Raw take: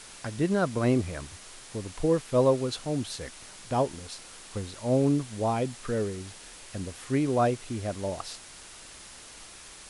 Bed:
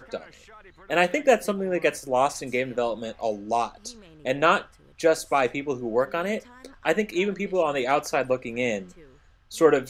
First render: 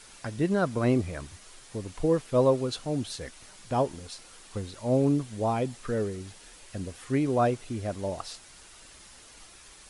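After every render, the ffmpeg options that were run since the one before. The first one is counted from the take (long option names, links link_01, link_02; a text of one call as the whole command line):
ffmpeg -i in.wav -af "afftdn=noise_reduction=6:noise_floor=-48" out.wav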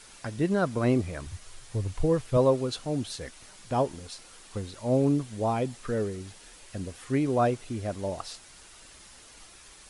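ffmpeg -i in.wav -filter_complex "[0:a]asettb=1/sr,asplit=3[link_01][link_02][link_03];[link_01]atrim=end=1.264[link_04];[link_02]atrim=start=1.26:end=2.37,asetpts=PTS-STARTPTS,afade=type=in:duration=0.004:curve=qsin,afade=type=out:start_time=1.106:duration=0.004:curve=qsin,lowshelf=frequency=150:width_type=q:width=1.5:gain=8[link_05];[link_03]atrim=start=2.366[link_06];[link_04][link_05]acrossfade=duration=0.004:curve1=hsin:curve2=qsin[link_07];[link_07][link_06]acrossfade=duration=0.004:curve1=qsin:curve2=hsin" out.wav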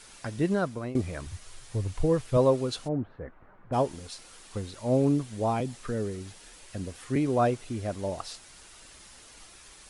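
ffmpeg -i in.wav -filter_complex "[0:a]asplit=3[link_01][link_02][link_03];[link_01]afade=type=out:start_time=2.87:duration=0.02[link_04];[link_02]lowpass=frequency=1500:width=0.5412,lowpass=frequency=1500:width=1.3066,afade=type=in:start_time=2.87:duration=0.02,afade=type=out:start_time=3.72:duration=0.02[link_05];[link_03]afade=type=in:start_time=3.72:duration=0.02[link_06];[link_04][link_05][link_06]amix=inputs=3:normalize=0,asettb=1/sr,asplit=3[link_07][link_08][link_09];[link_07]atrim=end=5.604[link_10];[link_08]atrim=start=5.6:end=7.16,asetpts=PTS-STARTPTS,afade=type=in:duration=0.004:curve=qsin,afade=type=out:start_time=1.556:duration=0.004:curve=qsin,acrossover=split=330|3000[link_11][link_12][link_13];[link_12]acompressor=threshold=-33dB:ratio=6:attack=3.2:release=140:knee=2.83:detection=peak[link_14];[link_11][link_14][link_13]amix=inputs=3:normalize=0[link_15];[link_09]atrim=start=7.156[link_16];[link_10][link_15]acrossfade=duration=0.004:curve1=hsin:curve2=qsin[link_17];[link_17][link_16]acrossfade=duration=0.004:curve1=qsin:curve2=hsin,asplit=2[link_18][link_19];[link_18]atrim=end=0.95,asetpts=PTS-STARTPTS,afade=type=out:start_time=0.51:duration=0.44:silence=0.125893[link_20];[link_19]atrim=start=0.95,asetpts=PTS-STARTPTS,afade=type=in:duration=0.004:curve=hsin:silence=0.125893[link_21];[link_20][link_21]concat=n=2:v=0:a=1" out.wav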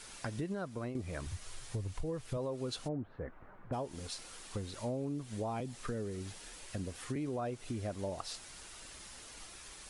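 ffmpeg -i in.wav -af "alimiter=limit=-21.5dB:level=0:latency=1:release=190,acompressor=threshold=-37dB:ratio=3" out.wav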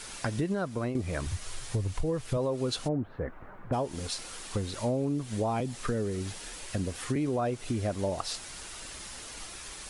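ffmpeg -i in.wav -af "volume=8dB" out.wav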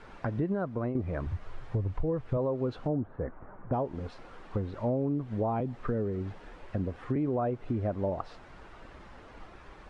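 ffmpeg -i in.wav -af "lowpass=1300" out.wav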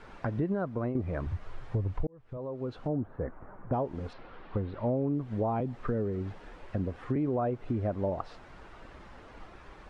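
ffmpeg -i in.wav -filter_complex "[0:a]asettb=1/sr,asplit=3[link_01][link_02][link_03];[link_01]atrim=end=4.134[link_04];[link_02]atrim=start=4.13:end=5.13,asetpts=PTS-STARTPTS,afade=type=in:duration=0.004:curve=qsin,afade=type=out:start_time=0.996:duration=0.004:curve=qsin,lowpass=frequency=4100:width=0.5412,lowpass=frequency=4100:width=1.3066[link_05];[link_03]atrim=start=5.126[link_06];[link_04][link_05]acrossfade=duration=0.004:curve1=hsin:curve2=qsin[link_07];[link_07][link_06]acrossfade=duration=0.004:curve1=qsin:curve2=hsin,asplit=2[link_08][link_09];[link_08]atrim=end=2.07,asetpts=PTS-STARTPTS,afade=type=out:start_time=2.066:duration=0.004:curve=hsin[link_10];[link_09]atrim=start=2.07,asetpts=PTS-STARTPTS,afade=type=in:duration=0.98[link_11];[link_10][link_11]concat=n=2:v=0:a=1" out.wav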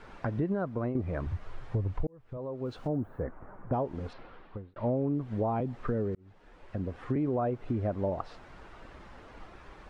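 ffmpeg -i in.wav -filter_complex "[0:a]asettb=1/sr,asplit=3[link_01][link_02][link_03];[link_01]atrim=end=2.654[link_04];[link_02]atrim=start=2.65:end=3.23,asetpts=PTS-STARTPTS,afade=type=in:duration=0.004:curve=qsin,afade=type=out:start_time=0.576:duration=0.004:curve=qsin,aemphasis=mode=production:type=50kf[link_05];[link_03]atrim=start=3.226[link_06];[link_04][link_05]acrossfade=duration=0.004:curve1=hsin:curve2=qsin[link_07];[link_07][link_06]acrossfade=duration=0.004:curve1=qsin:curve2=hsin,asplit=3[link_08][link_09][link_10];[link_08]atrim=end=4.76,asetpts=PTS-STARTPTS,afade=type=out:start_time=4.21:duration=0.55[link_11];[link_09]atrim=start=4.76:end=6.15,asetpts=PTS-STARTPTS,afade=type=in:duration=0.004:curve=hsin,afade=type=out:start_time=1.386:duration=0.004:curve=hsin[link_12];[link_10]atrim=start=6.15,asetpts=PTS-STARTPTS,afade=type=in:duration=0.88[link_13];[link_11][link_12][link_13]concat=n=3:v=0:a=1" out.wav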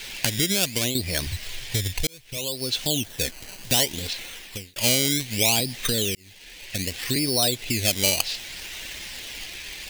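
ffmpeg -i in.wav -filter_complex "[0:a]asplit=2[link_01][link_02];[link_02]acrusher=samples=17:mix=1:aa=0.000001:lfo=1:lforange=17:lforate=0.65,volume=-9dB[link_03];[link_01][link_03]amix=inputs=2:normalize=0,aexciter=amount=14.8:drive=7.3:freq=2000" out.wav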